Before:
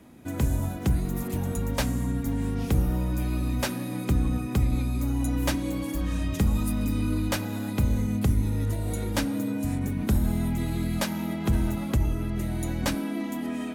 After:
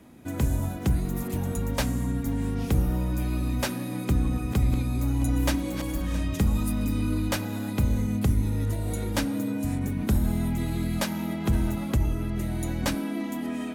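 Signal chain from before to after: 3.98–6.21 s: backward echo that repeats 333 ms, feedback 48%, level -10.5 dB

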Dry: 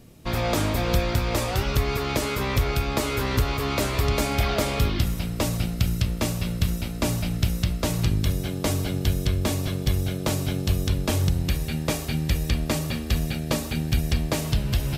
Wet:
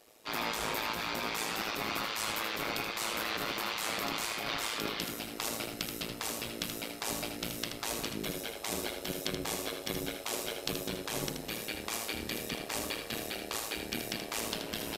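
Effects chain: high-pass 54 Hz; spectral gate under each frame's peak -10 dB weak; bass shelf 110 Hz -8.5 dB; compressor with a negative ratio -31 dBFS, ratio -1; AM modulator 110 Hz, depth 80%; delay 79 ms -7 dB

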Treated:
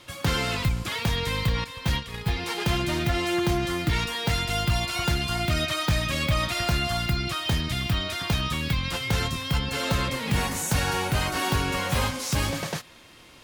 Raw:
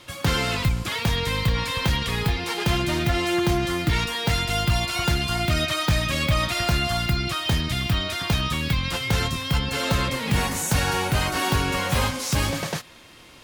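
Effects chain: 1.64–2.36 s: gate -23 dBFS, range -10 dB; trim -2.5 dB

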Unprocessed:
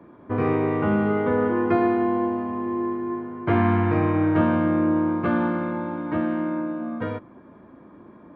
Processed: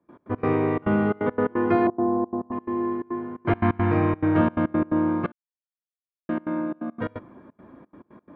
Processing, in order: 1.87–2.52 s: low-pass 1.1 kHz 24 dB/octave; trance gate ".x.x.xxxx.xxx" 174 bpm -24 dB; 5.32–6.29 s: mute

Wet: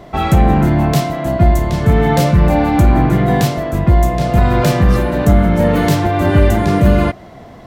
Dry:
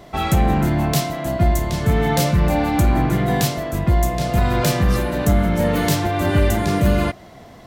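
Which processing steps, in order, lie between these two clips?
treble shelf 2.9 kHz -9 dB; trim +6 dB

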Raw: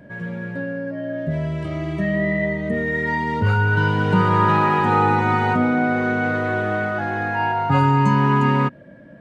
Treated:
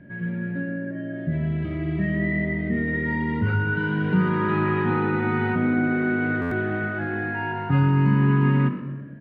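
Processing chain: high-order bell 740 Hz -9.5 dB; hum notches 50/100/150/200/250 Hz; in parallel at -1 dB: peak limiter -15.5 dBFS, peak gain reduction 7 dB; on the sum: distance through air 420 m; frequency-shifting echo 118 ms, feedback 44%, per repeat +48 Hz, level -15.5 dB; on a send at -11.5 dB: reverberation RT60 1.3 s, pre-delay 6 ms; on the sum: buffer glitch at 6.41 s, samples 512, times 8; trim -5 dB

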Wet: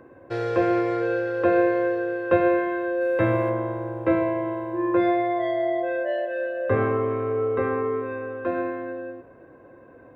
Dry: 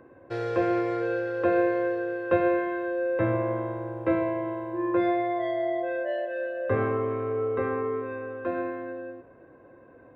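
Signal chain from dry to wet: 3.00–3.49 s: treble shelf 3.7 kHz -> 2.9 kHz +11 dB; trim +3.5 dB

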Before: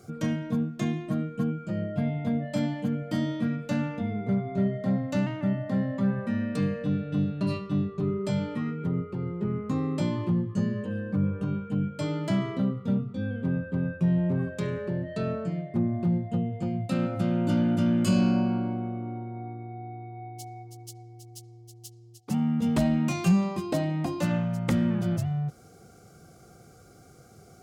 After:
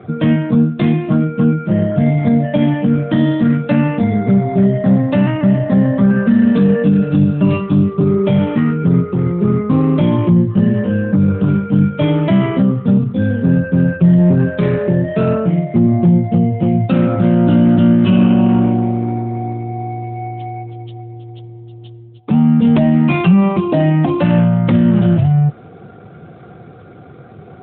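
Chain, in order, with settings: 3.05–3.67 s: band-stop 2.2 kHz, Q 24; 6.10–7.10 s: comb 4.5 ms, depth 67%; loudness maximiser +19.5 dB; trim -3 dB; AMR-NB 12.2 kbps 8 kHz

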